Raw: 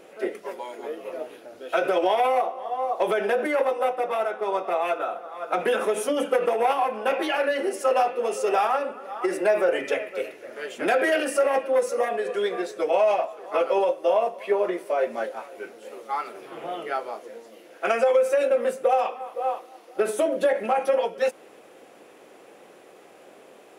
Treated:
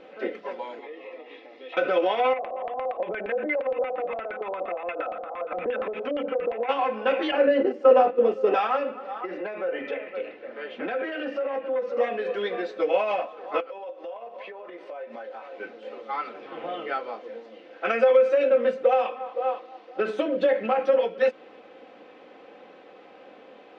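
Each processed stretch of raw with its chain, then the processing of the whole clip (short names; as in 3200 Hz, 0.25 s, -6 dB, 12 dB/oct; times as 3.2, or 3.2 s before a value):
0.79–1.77 compressor 3:1, threshold -37 dBFS + speaker cabinet 200–7100 Hz, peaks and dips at 210 Hz -9 dB, 620 Hz -8 dB, 1400 Hz -5 dB, 2000 Hz +10 dB, 3100 Hz +6 dB + notch comb 1500 Hz
2.33–6.69 LPF 9600 Hz + compressor 12:1, threshold -28 dBFS + LFO low-pass square 8.6 Hz 640–2300 Hz
7.31–8.54 gate -29 dBFS, range -8 dB + tilt shelf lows +8 dB, about 1200 Hz
9.21–11.97 compressor 2:1, threshold -31 dBFS + air absorption 170 m
13.6–15.6 HPF 270 Hz + compressor 8:1, threshold -36 dBFS
whole clip: LPF 4100 Hz 24 dB/oct; dynamic EQ 810 Hz, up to -6 dB, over -35 dBFS, Q 2; comb 3.9 ms, depth 48%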